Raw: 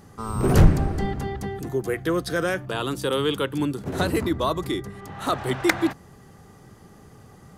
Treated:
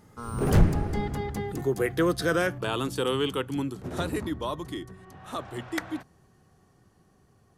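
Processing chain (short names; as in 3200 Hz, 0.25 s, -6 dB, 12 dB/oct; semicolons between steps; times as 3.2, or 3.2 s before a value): Doppler pass-by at 2.03, 21 m/s, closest 22 m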